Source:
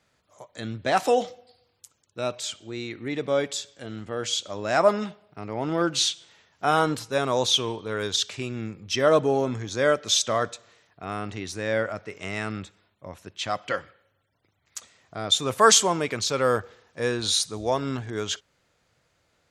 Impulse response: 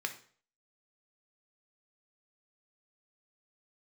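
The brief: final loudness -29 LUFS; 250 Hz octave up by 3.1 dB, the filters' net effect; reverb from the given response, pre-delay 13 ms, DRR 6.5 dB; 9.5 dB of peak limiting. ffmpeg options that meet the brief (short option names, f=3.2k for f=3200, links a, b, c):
-filter_complex "[0:a]equalizer=f=250:t=o:g=4,alimiter=limit=-14dB:level=0:latency=1,asplit=2[a][b];[1:a]atrim=start_sample=2205,adelay=13[c];[b][c]afir=irnorm=-1:irlink=0,volume=-9.5dB[d];[a][d]amix=inputs=2:normalize=0,volume=-2dB"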